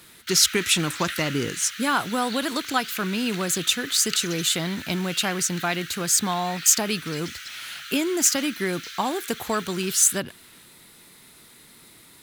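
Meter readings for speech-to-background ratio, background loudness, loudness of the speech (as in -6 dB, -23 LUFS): 12.0 dB, -35.0 LUFS, -23.0 LUFS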